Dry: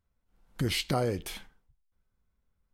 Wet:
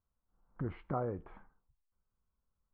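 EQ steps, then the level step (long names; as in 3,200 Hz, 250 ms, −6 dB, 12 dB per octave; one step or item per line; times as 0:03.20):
transistor ladder low-pass 1,400 Hz, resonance 45%
high-frequency loss of the air 250 metres
+1.0 dB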